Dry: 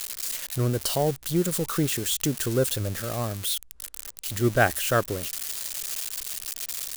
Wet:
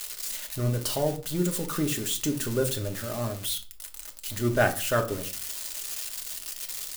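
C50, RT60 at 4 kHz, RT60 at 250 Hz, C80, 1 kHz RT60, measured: 13.5 dB, 0.30 s, 0.55 s, 19.0 dB, 0.40 s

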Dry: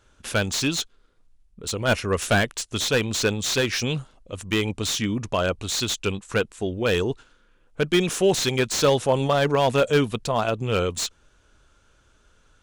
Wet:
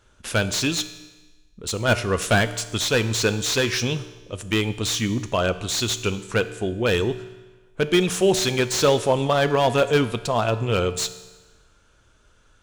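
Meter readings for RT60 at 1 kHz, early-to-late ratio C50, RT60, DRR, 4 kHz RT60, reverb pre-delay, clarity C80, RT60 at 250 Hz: 1.2 s, 13.5 dB, 1.2 s, 11.0 dB, 1.2 s, 3 ms, 15.0 dB, 1.2 s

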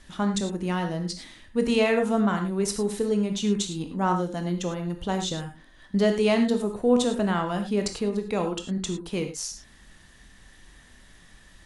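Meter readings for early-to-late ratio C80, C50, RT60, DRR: 11.0 dB, 8.0 dB, not exponential, 5.0 dB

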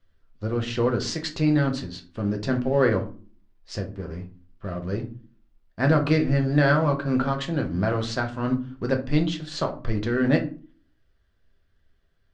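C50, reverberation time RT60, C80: 13.0 dB, 0.40 s, 19.0 dB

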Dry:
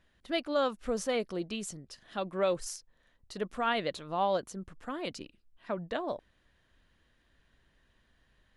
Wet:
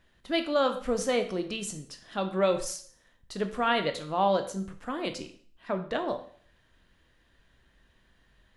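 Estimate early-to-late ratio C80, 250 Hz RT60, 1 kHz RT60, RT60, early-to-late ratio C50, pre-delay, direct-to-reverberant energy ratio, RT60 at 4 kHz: 14.5 dB, 0.50 s, 0.50 s, 0.50 s, 11.5 dB, 6 ms, 6.5 dB, 0.50 s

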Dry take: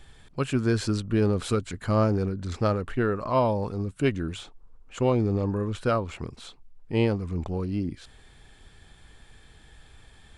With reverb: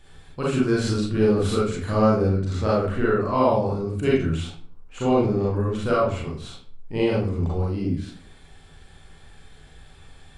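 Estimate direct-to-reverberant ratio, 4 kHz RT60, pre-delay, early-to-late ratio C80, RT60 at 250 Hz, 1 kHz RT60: -6.5 dB, 0.35 s, 33 ms, 7.5 dB, 0.65 s, 0.50 s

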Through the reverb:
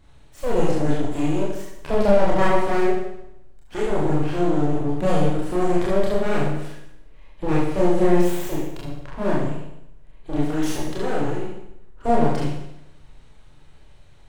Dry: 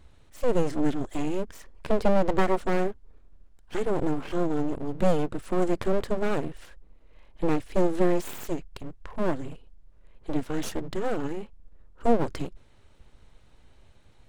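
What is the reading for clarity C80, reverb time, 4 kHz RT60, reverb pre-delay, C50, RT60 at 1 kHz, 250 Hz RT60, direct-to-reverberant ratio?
4.5 dB, 0.80 s, 0.80 s, 25 ms, 1.0 dB, 0.80 s, 0.80 s, -6.0 dB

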